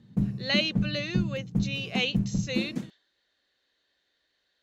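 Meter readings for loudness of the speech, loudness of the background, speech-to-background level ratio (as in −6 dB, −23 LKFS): −31.0 LKFS, −31.0 LKFS, 0.0 dB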